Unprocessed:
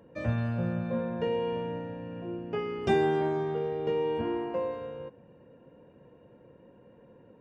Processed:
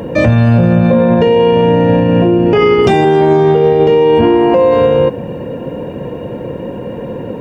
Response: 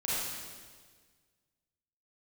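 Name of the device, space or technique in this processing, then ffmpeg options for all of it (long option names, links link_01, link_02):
loud club master: -filter_complex "[0:a]asettb=1/sr,asplit=3[link_01][link_02][link_03];[link_01]atrim=end=2.434[link_04];[link_02]atrim=start=2.43:end=3.05,asetpts=PTS-STARTPTS,afade=type=in:duration=0.004:curve=qsin,afade=type=out:start_time=0.616:duration=0.004:curve=qsin,asplit=2[link_05][link_06];[link_06]adelay=32,volume=-7dB[link_07];[link_05][link_07]amix=inputs=2:normalize=0,atrim=end_sample=27342[link_08];[link_03]atrim=start=3.046[link_09];[link_04][link_08]acrossfade=duration=0.004:curve1=hsin:curve2=qsin[link_10];[link_10][link_09]acrossfade=duration=0.004:curve1=qsin:curve2=hsin,equalizer=frequency=1400:width_type=o:width=0.72:gain=-5,acompressor=threshold=-33dB:ratio=3,asoftclip=type=hard:threshold=-25dB,alimiter=level_in=34dB:limit=-1dB:release=50:level=0:latency=1,volume=-1dB"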